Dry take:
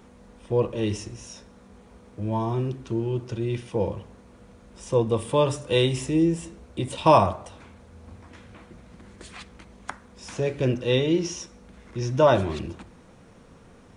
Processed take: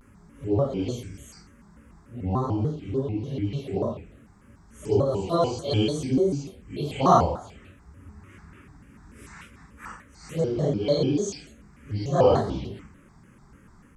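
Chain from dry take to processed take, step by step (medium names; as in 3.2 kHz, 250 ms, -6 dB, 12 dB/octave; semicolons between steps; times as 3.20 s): phase randomisation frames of 200 ms; touch-sensitive phaser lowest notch 550 Hz, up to 2.3 kHz, full sweep at -22 dBFS; vibrato with a chosen wave square 3.4 Hz, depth 250 cents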